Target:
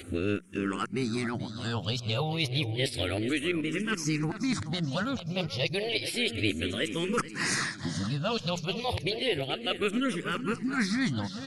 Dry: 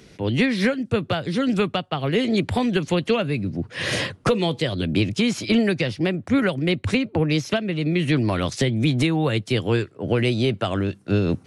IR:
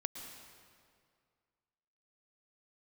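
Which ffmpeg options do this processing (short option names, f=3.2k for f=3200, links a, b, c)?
-filter_complex "[0:a]areverse,equalizer=f=1.3k:t=o:w=0.26:g=4,asplit=2[a][b];[b]aecho=0:1:430|860|1290|1720|2150:0.224|0.116|0.0605|0.0315|0.0164[c];[a][c]amix=inputs=2:normalize=0,acompressor=threshold=-45dB:ratio=2,aeval=exprs='0.0668*(cos(1*acos(clip(val(0)/0.0668,-1,1)))-cos(1*PI/2))+0.00188*(cos(4*acos(clip(val(0)/0.0668,-1,1)))-cos(4*PI/2))':c=same,highshelf=f=2.7k:g=9.5,bandreject=f=60:t=h:w=6,bandreject=f=120:t=h:w=6,bandreject=f=180:t=h:w=6,asplit=2[d][e];[e]afreqshift=-0.31[f];[d][f]amix=inputs=2:normalize=1,volume=8dB"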